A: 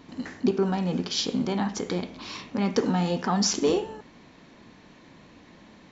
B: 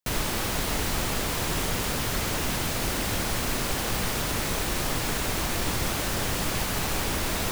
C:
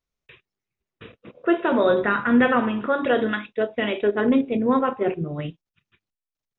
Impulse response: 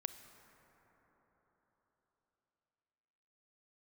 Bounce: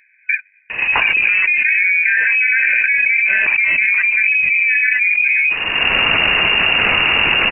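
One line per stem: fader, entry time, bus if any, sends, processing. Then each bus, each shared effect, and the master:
-15.5 dB, 0.70 s, no send, peaking EQ 860 Hz +6 dB 1.1 oct; band-stop 1.5 kHz, Q 17
-19.0 dB, 0.90 s, no send, auto duck -19 dB, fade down 1.85 s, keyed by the third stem
+1.0 dB, 0.00 s, no send, FFT band-pass 240–1300 Hz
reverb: none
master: frequency inversion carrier 2.8 kHz; level flattener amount 100%

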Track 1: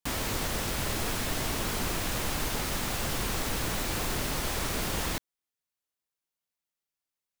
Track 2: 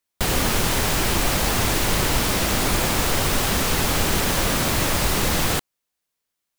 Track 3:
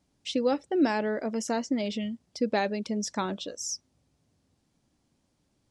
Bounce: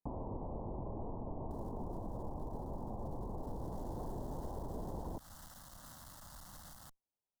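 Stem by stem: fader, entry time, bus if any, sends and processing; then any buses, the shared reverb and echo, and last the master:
-0.5 dB, 0.00 s, no bus, no send, steep low-pass 1 kHz 72 dB/octave
-19.0 dB, 1.30 s, bus A, no send, Chebyshev shaper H 3 -18 dB, 4 -13 dB, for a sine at -7 dBFS; auto duck -19 dB, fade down 1.75 s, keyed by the third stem
-6.5 dB, 0.00 s, bus A, no send, bass shelf 120 Hz +7.5 dB; compression, threshold -25 dBFS, peak gain reduction 7.5 dB; spectral contrast expander 4:1
bus A: 0.0 dB, static phaser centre 1 kHz, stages 4; peak limiter -42.5 dBFS, peak gain reduction 15 dB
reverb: none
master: compression 3:1, threshold -41 dBFS, peak gain reduction 10 dB

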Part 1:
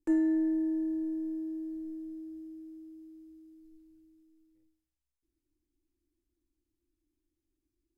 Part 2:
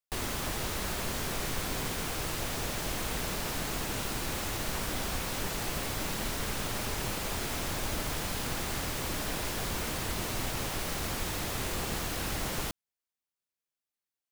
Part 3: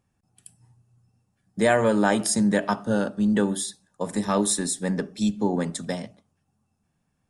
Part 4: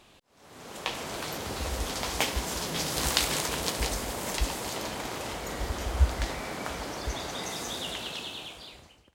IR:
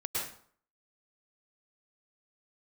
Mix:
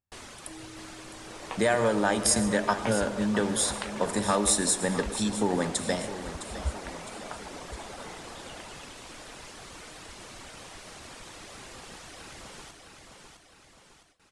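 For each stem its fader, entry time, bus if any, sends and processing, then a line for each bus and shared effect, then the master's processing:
-18.0 dB, 0.40 s, no send, no echo send, none
-8.5 dB, 0.00 s, send -14 dB, echo send -4 dB, steep low-pass 10 kHz 36 dB/octave; reverb removal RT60 1.4 s
+2.5 dB, 0.00 s, send -16 dB, echo send -12 dB, compression, threshold -22 dBFS, peak gain reduction 7.5 dB; resonant low shelf 120 Hz +7.5 dB, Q 1.5
-1.0 dB, 0.65 s, no send, no echo send, reverb removal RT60 1.8 s; low-pass 1.6 kHz 12 dB/octave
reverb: on, RT60 0.55 s, pre-delay 97 ms
echo: feedback delay 660 ms, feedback 51%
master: gate with hold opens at -47 dBFS; bass shelf 220 Hz -8.5 dB

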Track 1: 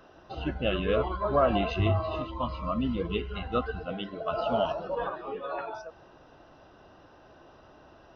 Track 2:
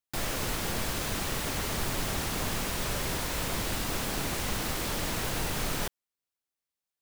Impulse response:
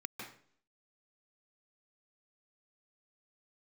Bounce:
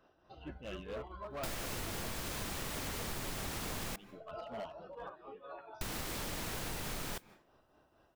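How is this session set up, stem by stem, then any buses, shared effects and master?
-12.0 dB, 0.00 s, no send, overload inside the chain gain 24 dB; tremolo triangle 4.4 Hz, depth 60%
-0.5 dB, 1.30 s, muted 3.96–5.81 s, send -21.5 dB, modulation noise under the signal 17 dB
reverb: on, RT60 0.55 s, pre-delay 144 ms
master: compression 6:1, threshold -37 dBFS, peak gain reduction 10 dB

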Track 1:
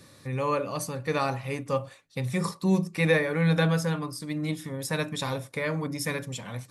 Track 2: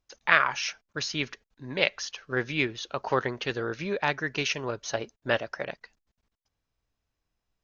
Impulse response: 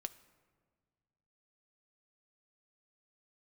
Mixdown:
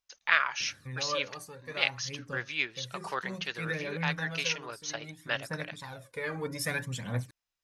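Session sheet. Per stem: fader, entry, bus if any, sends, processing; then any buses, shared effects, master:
-3.5 dB, 0.60 s, no send, peaking EQ 1.6 kHz +7 dB 0.36 oct; phaser 0.61 Hz, delay 2.6 ms, feedback 61%; auto duck -12 dB, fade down 1.65 s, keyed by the second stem
-9.5 dB, 0.00 s, no send, tilt shelf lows -9 dB, about 730 Hz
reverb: none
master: none

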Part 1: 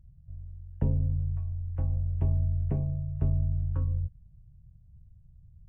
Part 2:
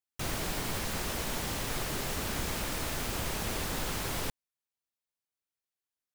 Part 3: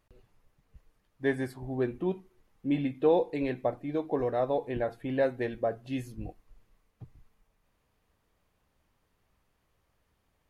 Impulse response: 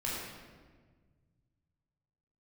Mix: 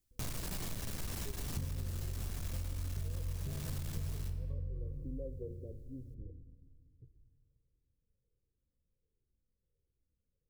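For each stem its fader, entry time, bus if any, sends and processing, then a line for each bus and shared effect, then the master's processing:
-5.5 dB, 0.75 s, no bus, send -4.5 dB, loudest bins only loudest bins 16; endings held to a fixed fall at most 150 dB/s
+2.0 dB, 0.00 s, bus A, send -16 dB, tone controls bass +11 dB, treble +7 dB; overload inside the chain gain 31.5 dB
-8.0 dB, 0.00 s, bus A, send -17 dB, steep low-pass 540 Hz 96 dB/octave; Shepard-style flanger falling 1.4 Hz
bus A: 0.0 dB, compression, threshold -38 dBFS, peak gain reduction 10 dB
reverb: on, RT60 1.5 s, pre-delay 15 ms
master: compression 6:1, threshold -36 dBFS, peak gain reduction 15 dB

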